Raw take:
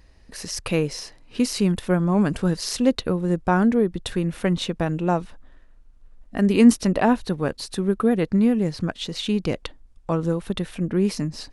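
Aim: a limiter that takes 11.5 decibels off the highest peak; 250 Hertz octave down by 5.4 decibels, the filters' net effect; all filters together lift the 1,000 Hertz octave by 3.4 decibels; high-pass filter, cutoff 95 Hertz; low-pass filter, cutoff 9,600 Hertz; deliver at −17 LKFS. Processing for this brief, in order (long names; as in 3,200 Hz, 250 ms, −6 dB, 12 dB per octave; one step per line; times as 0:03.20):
high-pass filter 95 Hz
low-pass filter 9,600 Hz
parametric band 250 Hz −7 dB
parametric band 1,000 Hz +5 dB
level +11.5 dB
brickwall limiter −5.5 dBFS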